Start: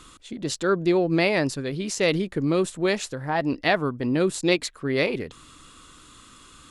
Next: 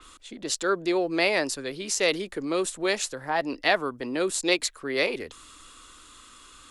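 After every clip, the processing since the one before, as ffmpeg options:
-filter_complex "[0:a]equalizer=f=140:w=0.7:g=-12,acrossover=split=210|490|3400[s0][s1][s2][s3];[s0]alimiter=level_in=8.91:limit=0.0631:level=0:latency=1,volume=0.112[s4];[s4][s1][s2][s3]amix=inputs=4:normalize=0,adynamicequalizer=threshold=0.01:dfrequency=4600:dqfactor=0.7:tfrequency=4600:tqfactor=0.7:attack=5:release=100:ratio=0.375:range=2.5:mode=boostabove:tftype=highshelf"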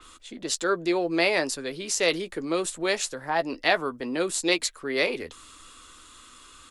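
-filter_complex "[0:a]asplit=2[s0][s1];[s1]adelay=12,volume=0.282[s2];[s0][s2]amix=inputs=2:normalize=0"

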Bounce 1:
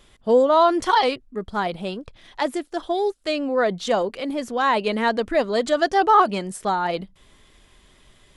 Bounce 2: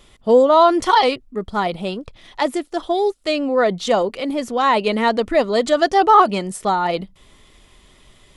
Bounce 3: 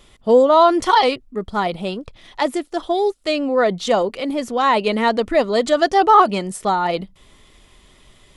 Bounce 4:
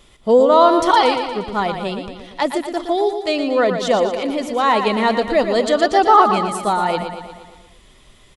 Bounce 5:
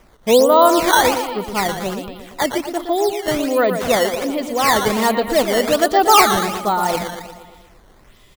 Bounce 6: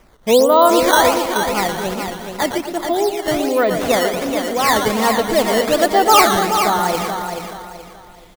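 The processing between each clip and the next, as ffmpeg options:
-af "bandreject=f=1600:w=9.6,volume=1.58"
-af anull
-af "aecho=1:1:117|234|351|468|585|702|819:0.398|0.231|0.134|0.0777|0.0451|0.0261|0.0152"
-af "acrusher=samples=10:mix=1:aa=0.000001:lfo=1:lforange=16:lforate=1.3"
-af "aecho=1:1:428|856|1284|1712:0.447|0.147|0.0486|0.0161"

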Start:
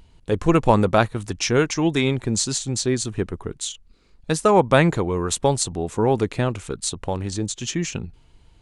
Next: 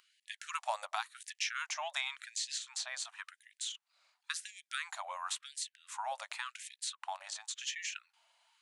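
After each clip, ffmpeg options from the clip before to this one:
-filter_complex "[0:a]acrossover=split=510|3700[s0][s1][s2];[s0]acompressor=threshold=0.0562:ratio=4[s3];[s1]acompressor=threshold=0.0355:ratio=4[s4];[s2]acompressor=threshold=0.0141:ratio=4[s5];[s3][s4][s5]amix=inputs=3:normalize=0,asubboost=boost=10.5:cutoff=68,afftfilt=real='re*gte(b*sr/1024,540*pow(1700/540,0.5+0.5*sin(2*PI*0.93*pts/sr)))':imag='im*gte(b*sr/1024,540*pow(1700/540,0.5+0.5*sin(2*PI*0.93*pts/sr)))':win_size=1024:overlap=0.75,volume=0.562"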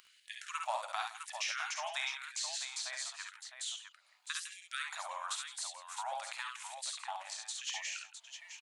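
-af "acompressor=mode=upward:threshold=0.00158:ratio=2.5,aecho=1:1:52|68|166|659:0.447|0.562|0.168|0.376,volume=0.794"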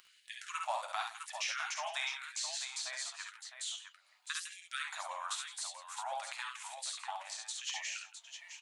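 -af "flanger=delay=5.7:depth=6.2:regen=-48:speed=0.66:shape=sinusoidal,volume=1.58"

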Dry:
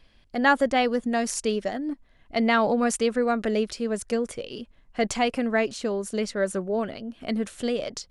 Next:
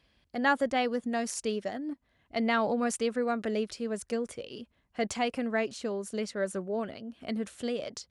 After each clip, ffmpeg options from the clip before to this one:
-af "highpass=f=49:w=0.5412,highpass=f=49:w=1.3066,volume=0.501"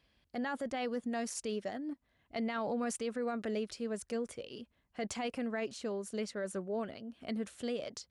-af "alimiter=level_in=1.06:limit=0.0631:level=0:latency=1:release=14,volume=0.944,volume=0.631"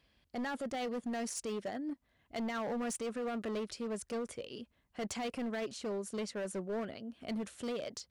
-af "volume=53.1,asoftclip=hard,volume=0.0188,volume=1.12"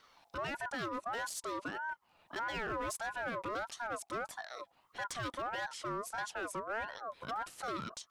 -af "alimiter=level_in=7.94:limit=0.0631:level=0:latency=1:release=409,volume=0.126,aeval=exprs='val(0)*sin(2*PI*1000*n/s+1000*0.25/1.6*sin(2*PI*1.6*n/s))':c=same,volume=3.16"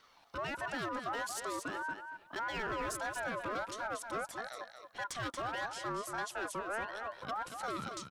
-af "aecho=1:1:232|464|696:0.447|0.0715|0.0114"

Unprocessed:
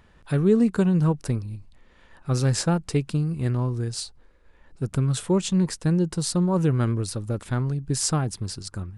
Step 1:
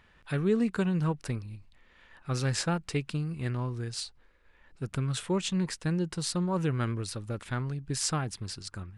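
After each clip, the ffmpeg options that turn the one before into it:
-af "equalizer=f=2300:t=o:w=2.2:g=9,volume=0.398"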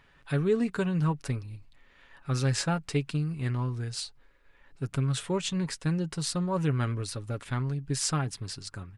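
-af "aecho=1:1:7.2:0.43"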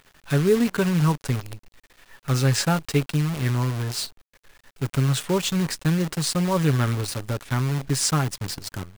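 -af "acrusher=bits=7:dc=4:mix=0:aa=0.000001,volume=2.11"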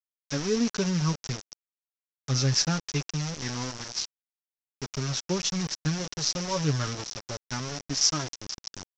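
-af "flanger=delay=2.8:depth=5.2:regen=33:speed=0.24:shape=triangular,aresample=16000,aeval=exprs='val(0)*gte(abs(val(0)),0.0316)':c=same,aresample=44100,lowpass=f=5700:t=q:w=6.3,volume=0.631"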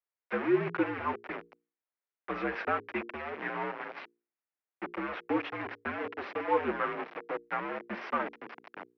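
-af "volume=8.41,asoftclip=hard,volume=0.119,bandreject=f=60:t=h:w=6,bandreject=f=120:t=h:w=6,bandreject=f=180:t=h:w=6,bandreject=f=240:t=h:w=6,bandreject=f=300:t=h:w=6,bandreject=f=360:t=h:w=6,bandreject=f=420:t=h:w=6,bandreject=f=480:t=h:w=6,bandreject=f=540:t=h:w=6,highpass=f=370:t=q:w=0.5412,highpass=f=370:t=q:w=1.307,lowpass=f=2400:t=q:w=0.5176,lowpass=f=2400:t=q:w=0.7071,lowpass=f=2400:t=q:w=1.932,afreqshift=-71,volume=1.68"

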